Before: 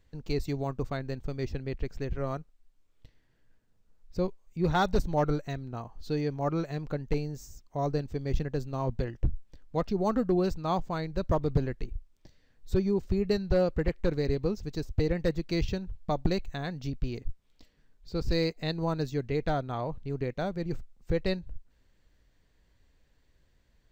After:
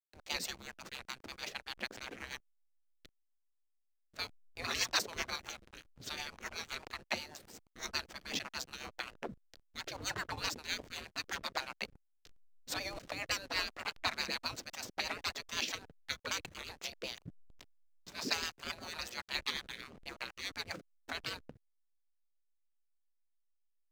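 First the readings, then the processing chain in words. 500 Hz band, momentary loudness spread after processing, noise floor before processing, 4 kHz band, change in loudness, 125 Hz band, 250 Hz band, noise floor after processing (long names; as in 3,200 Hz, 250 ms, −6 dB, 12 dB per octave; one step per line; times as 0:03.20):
−18.5 dB, 12 LU, −67 dBFS, +5.5 dB, −8.0 dB, −24.0 dB, −20.5 dB, −78 dBFS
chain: gate on every frequency bin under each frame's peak −30 dB weak
slack as between gear wheels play −55 dBFS
rotating-speaker cabinet horn 8 Hz
level +16 dB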